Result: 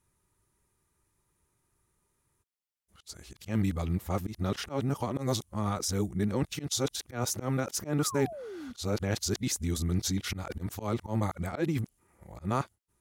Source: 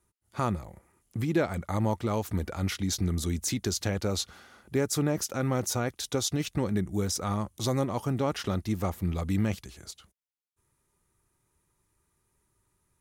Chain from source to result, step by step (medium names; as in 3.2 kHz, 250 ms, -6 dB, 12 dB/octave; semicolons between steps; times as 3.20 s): reverse the whole clip; slow attack 109 ms; painted sound fall, 7.99–8.73 s, 230–1500 Hz -40 dBFS; trim -1 dB